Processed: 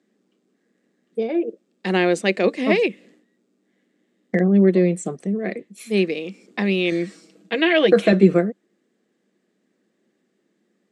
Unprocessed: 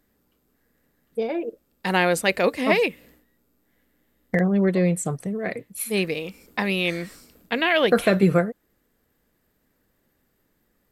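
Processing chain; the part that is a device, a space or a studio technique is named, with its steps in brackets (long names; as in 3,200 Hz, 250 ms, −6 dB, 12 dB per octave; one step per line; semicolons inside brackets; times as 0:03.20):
television speaker (loudspeaker in its box 190–7,600 Hz, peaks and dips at 200 Hz +8 dB, 360 Hz +8 dB, 940 Hz −7 dB, 1,400 Hz −5 dB, 4,800 Hz −3 dB)
0:06.91–0:08.13: comb filter 6.2 ms, depth 65%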